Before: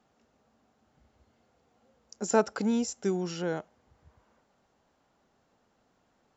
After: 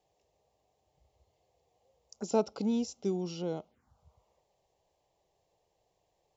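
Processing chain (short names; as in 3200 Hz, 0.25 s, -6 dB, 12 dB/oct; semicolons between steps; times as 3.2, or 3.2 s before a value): envelope phaser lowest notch 230 Hz, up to 1700 Hz, full sweep at -33.5 dBFS; gain -2.5 dB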